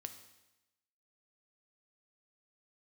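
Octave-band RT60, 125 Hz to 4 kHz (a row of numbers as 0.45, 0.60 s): 0.95, 1.0, 0.95, 0.95, 1.0, 1.0 s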